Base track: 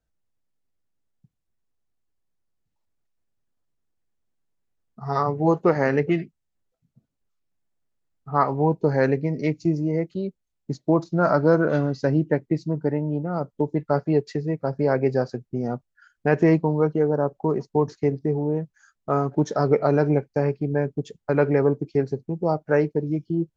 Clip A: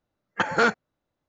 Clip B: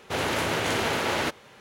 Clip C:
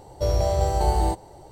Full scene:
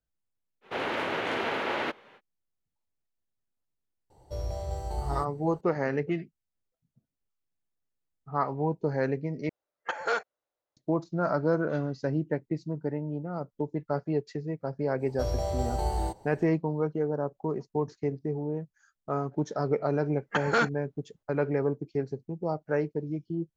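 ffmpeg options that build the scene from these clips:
-filter_complex "[3:a]asplit=2[s0][s1];[1:a]asplit=2[s2][s3];[0:a]volume=0.398[s4];[2:a]acrossover=split=200 3600:gain=0.2 1 0.1[s5][s6][s7];[s5][s6][s7]amix=inputs=3:normalize=0[s8];[s0]lowshelf=f=140:g=4.5[s9];[s2]lowshelf=f=320:t=q:w=1.5:g=-14[s10];[s4]asplit=2[s11][s12];[s11]atrim=end=9.494[s13];[s10]atrim=end=1.28,asetpts=PTS-STARTPTS,volume=0.355[s14];[s12]atrim=start=10.766[s15];[s8]atrim=end=1.6,asetpts=PTS-STARTPTS,volume=0.708,afade=t=in:d=0.05,afade=t=out:st=1.55:d=0.05,adelay=610[s16];[s9]atrim=end=1.51,asetpts=PTS-STARTPTS,volume=0.188,afade=t=in:d=0.004:c=hsin,afade=t=out:st=1.506:d=0.004:c=hsin,adelay=4100[s17];[s1]atrim=end=1.51,asetpts=PTS-STARTPTS,volume=0.398,afade=t=in:d=0.05,afade=t=out:st=1.46:d=0.05,adelay=14980[s18];[s3]atrim=end=1.28,asetpts=PTS-STARTPTS,volume=0.596,afade=t=in:d=0.004:c=hsin,afade=t=out:st=1.276:d=0.004:c=hsin,adelay=19950[s19];[s13][s14]acrossfade=d=0.004:c1=hsin:c2=hsin[s20];[s20][s15]acrossfade=d=0.004:c1=hsin:c2=hsin[s21];[s21][s16][s17][s18][s19]amix=inputs=5:normalize=0"

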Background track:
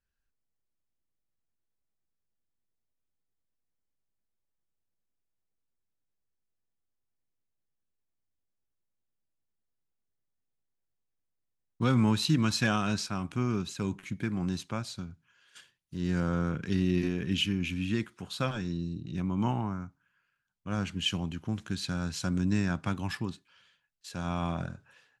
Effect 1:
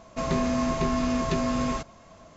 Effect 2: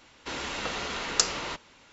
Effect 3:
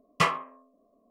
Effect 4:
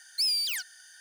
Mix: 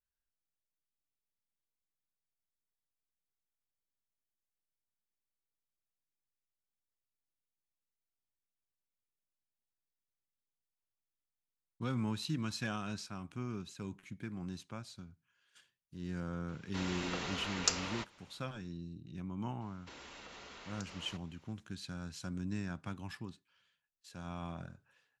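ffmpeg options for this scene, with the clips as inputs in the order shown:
-filter_complex "[2:a]asplit=2[s0][s1];[0:a]volume=0.282[s2];[s1]acompressor=threshold=0.0178:ratio=6:attack=3.2:release=140:knee=1:detection=peak[s3];[s0]atrim=end=1.92,asetpts=PTS-STARTPTS,volume=0.422,afade=t=in:d=0.004:c=hsin,afade=t=out:st=1.916:d=0.004:c=hsin,adelay=16480[s4];[s3]atrim=end=1.92,asetpts=PTS-STARTPTS,volume=0.224,afade=t=in:d=0.004:c=hsin,afade=t=out:st=1.916:d=0.004:c=hsin,adelay=19610[s5];[s2][s4][s5]amix=inputs=3:normalize=0"

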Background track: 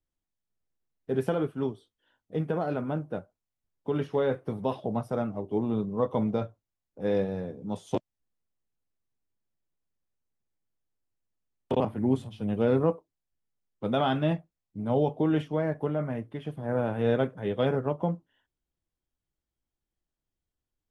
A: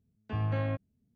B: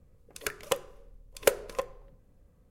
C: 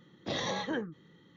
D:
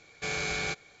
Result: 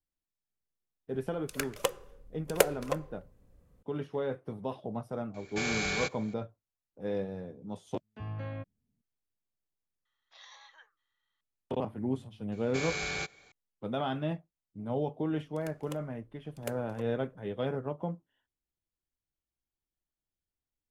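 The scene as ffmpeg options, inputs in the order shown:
-filter_complex "[2:a]asplit=2[s0][s1];[4:a]asplit=2[s2][s3];[0:a]volume=0.447[s4];[3:a]highpass=f=930:w=0.5412,highpass=f=930:w=1.3066[s5];[s0]atrim=end=2.7,asetpts=PTS-STARTPTS,volume=0.891,afade=t=in:d=0.004:c=hsin,afade=t=out:st=2.696:d=0.004:c=hsin,adelay=1130[s6];[s2]atrim=end=1,asetpts=PTS-STARTPTS,volume=0.944,afade=t=in:d=0.004:c=hsin,afade=t=out:st=0.996:d=0.004:c=hsin,adelay=5340[s7];[1:a]atrim=end=1.15,asetpts=PTS-STARTPTS,volume=0.398,afade=t=in:d=0.004:c=hsin,afade=t=out:st=1.146:d=0.004:c=hsin,adelay=7870[s8];[s5]atrim=end=1.36,asetpts=PTS-STARTPTS,volume=0.15,afade=t=in:d=0.004:c=hsin,afade=t=out:st=1.356:d=0.004:c=hsin,adelay=10050[s9];[s3]atrim=end=1,asetpts=PTS-STARTPTS,volume=0.708,afade=t=in:d=0.004:c=hsin,afade=t=out:st=0.996:d=0.004:c=hsin,adelay=552132S[s10];[s1]atrim=end=2.7,asetpts=PTS-STARTPTS,volume=0.15,afade=t=in:d=0.004:c=hsin,afade=t=out:st=2.696:d=0.004:c=hsin,adelay=15200[s11];[s4][s6][s7][s8][s9][s10][s11]amix=inputs=7:normalize=0"

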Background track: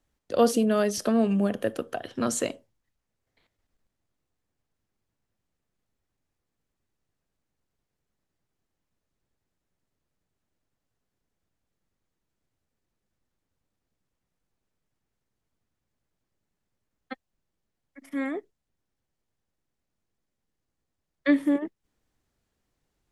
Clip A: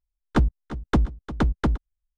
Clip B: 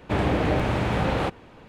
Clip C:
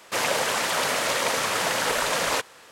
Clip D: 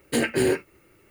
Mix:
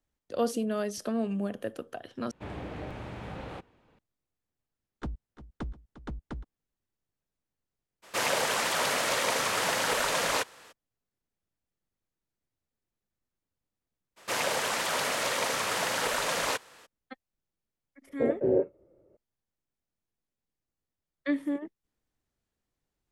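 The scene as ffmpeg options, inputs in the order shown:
-filter_complex "[3:a]asplit=2[s0][s1];[0:a]volume=0.422[s2];[4:a]lowpass=f=570:t=q:w=5.3[s3];[s2]asplit=2[s4][s5];[s4]atrim=end=2.314[s6];[2:a]atrim=end=1.68,asetpts=PTS-STARTPTS,volume=0.15[s7];[s5]atrim=start=3.986[s8];[1:a]atrim=end=2.17,asetpts=PTS-STARTPTS,volume=0.141,afade=t=in:d=0.004:c=hsin,afade=t=out:st=2.166:d=0.004:c=hsin,adelay=4670[s9];[s0]atrim=end=2.71,asetpts=PTS-STARTPTS,volume=0.668,afade=t=in:d=0.02,afade=t=out:st=2.69:d=0.02,adelay=353682S[s10];[s1]atrim=end=2.71,asetpts=PTS-STARTPTS,volume=0.562,afade=t=in:d=0.02,afade=t=out:st=2.69:d=0.02,adelay=14160[s11];[s3]atrim=end=1.1,asetpts=PTS-STARTPTS,volume=0.376,afade=t=in:d=0.004:c=hsin,afade=t=out:st=1.096:d=0.004:c=hsin,adelay=18070[s12];[s6][s7]acrossfade=d=0.004:c1=hsin:c2=hsin[s13];[s13][s8]acrossfade=d=0.004:c1=hsin:c2=hsin[s14];[s14][s9][s10][s11][s12]amix=inputs=5:normalize=0"

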